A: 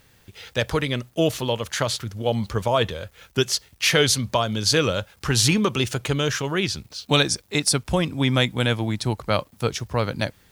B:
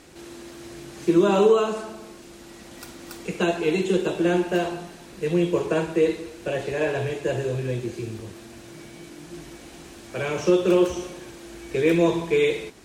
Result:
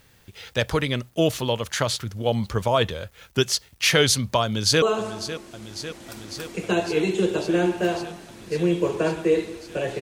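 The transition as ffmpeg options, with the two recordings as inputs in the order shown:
-filter_complex "[0:a]apad=whole_dur=10.01,atrim=end=10.01,atrim=end=4.822[s0];[1:a]atrim=start=1.528:end=6.72[s1];[s0][s1]acrossfade=d=0.004:c1=hsin:c2=hsin,asplit=2[s2][s3];[s3]afade=t=in:st=4.43:d=0.01,afade=t=out:st=4.82:d=0.01,aecho=0:1:550|1100|1650|2200|2750|3300|3850|4400|4950|5500|6050|6600:0.237137|0.18971|0.151768|0.121414|0.0971315|0.0777052|0.0621641|0.0497313|0.039785|0.031828|0.0254624|0.0203699[s4];[s2][s4]amix=inputs=2:normalize=0"

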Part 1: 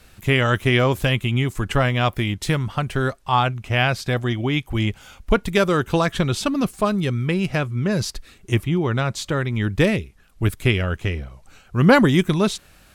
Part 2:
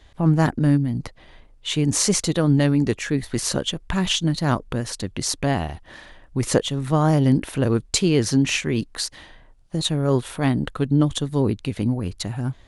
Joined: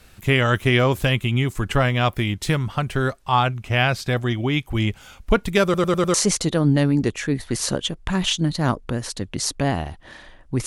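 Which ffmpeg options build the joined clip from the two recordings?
-filter_complex "[0:a]apad=whole_dur=10.66,atrim=end=10.66,asplit=5[s0][s1][s2][s3][s4];[s0]atrim=end=5.742[s5];[s1]atrim=start=5.638:end=5.742[s6];[s2]atrim=start=5.638:end=5.742[s7];[s3]atrim=start=5.638:end=5.742[s8];[s4]atrim=start=5.638:end=5.742[s9];[1:a]atrim=start=1.968:end=6.49[s10];[s5][s6]acrossfade=d=0.004:c1=hsin:c2=hsin[s11];[s11][s7]acrossfade=d=0.004:c1=hsin:c2=hsin[s12];[s12][s8]acrossfade=d=0.004:c1=hsin:c2=hsin[s13];[s13][s9]acrossfade=d=0.004:c1=hsin:c2=hsin[s14];[s14][s10]acrossfade=d=0.004:c1=hsin:c2=hsin"

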